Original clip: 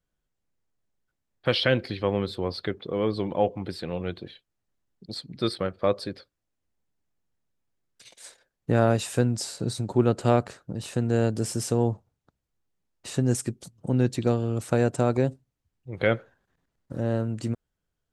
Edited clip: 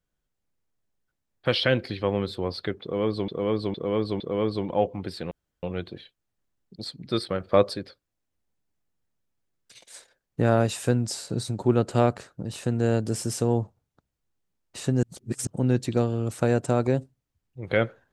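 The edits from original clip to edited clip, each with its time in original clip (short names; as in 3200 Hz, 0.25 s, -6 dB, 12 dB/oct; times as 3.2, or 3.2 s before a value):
2.82–3.28 loop, 4 plays
3.93 insert room tone 0.32 s
5.7–6.03 gain +4.5 dB
13.33–13.77 reverse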